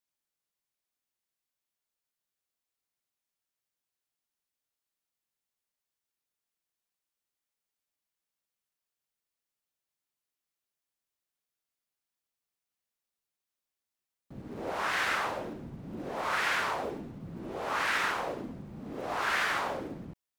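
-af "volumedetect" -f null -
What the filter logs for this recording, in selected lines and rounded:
mean_volume: -39.1 dB
max_volume: -16.4 dB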